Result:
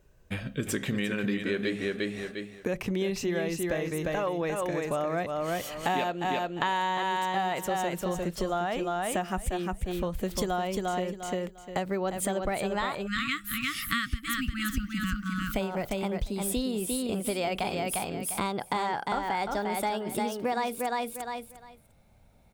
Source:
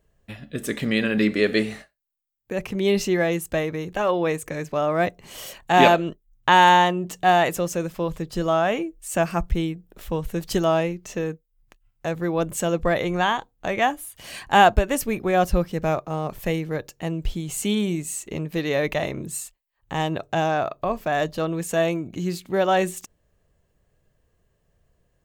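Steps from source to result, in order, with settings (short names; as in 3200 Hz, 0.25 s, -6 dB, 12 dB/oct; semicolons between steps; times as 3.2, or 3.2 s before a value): speed glide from 92% -> 132%; feedback echo 0.351 s, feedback 17%, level -5 dB; spectral delete 13.07–15.55, 320–1100 Hz; compressor 6:1, threshold -32 dBFS, peak gain reduction 20 dB; gain +4.5 dB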